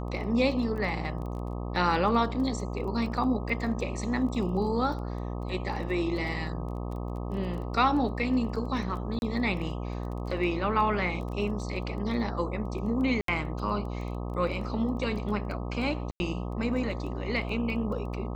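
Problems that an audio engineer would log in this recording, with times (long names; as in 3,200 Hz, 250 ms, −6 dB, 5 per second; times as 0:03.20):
mains buzz 60 Hz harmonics 21 −34 dBFS
surface crackle 14 per second −37 dBFS
0:09.19–0:09.22: drop-out 31 ms
0:13.21–0:13.28: drop-out 73 ms
0:16.11–0:16.20: drop-out 90 ms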